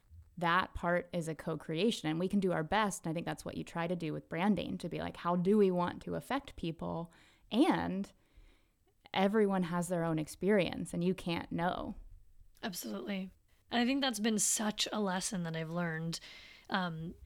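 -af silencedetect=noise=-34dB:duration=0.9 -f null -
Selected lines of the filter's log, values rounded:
silence_start: 8.04
silence_end: 9.14 | silence_duration: 1.10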